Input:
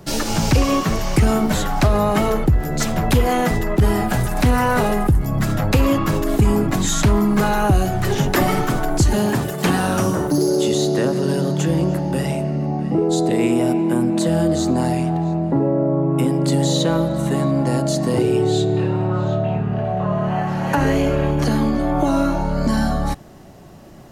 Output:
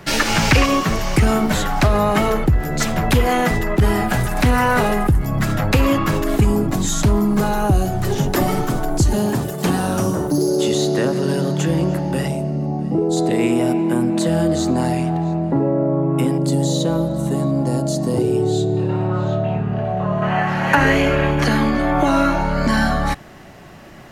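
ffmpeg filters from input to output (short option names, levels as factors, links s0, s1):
-af "asetnsamples=n=441:p=0,asendcmd='0.66 equalizer g 4;6.45 equalizer g -5;10.59 equalizer g 2.5;12.28 equalizer g -6.5;13.17 equalizer g 2;16.38 equalizer g -8.5;18.89 equalizer g 1;20.22 equalizer g 11',equalizer=f=2000:t=o:w=1.8:g=12.5"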